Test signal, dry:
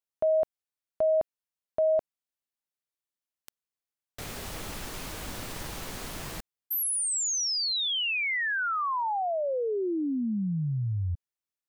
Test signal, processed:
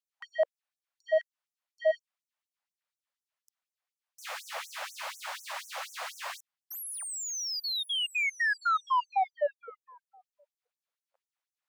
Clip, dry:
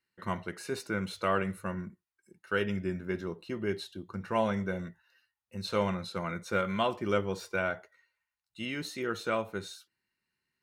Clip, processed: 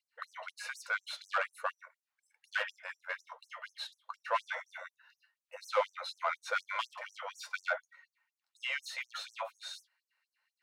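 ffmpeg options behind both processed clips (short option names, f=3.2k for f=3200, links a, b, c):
-filter_complex "[0:a]asplit=2[a][b];[b]highpass=f=720:p=1,volume=18dB,asoftclip=type=tanh:threshold=-15.5dB[c];[a][c]amix=inputs=2:normalize=0,lowpass=f=1.2k:p=1,volume=-6dB,afftfilt=real='re*gte(b*sr/1024,470*pow(5800/470,0.5+0.5*sin(2*PI*4.1*pts/sr)))':imag='im*gte(b*sr/1024,470*pow(5800/470,0.5+0.5*sin(2*PI*4.1*pts/sr)))':win_size=1024:overlap=0.75"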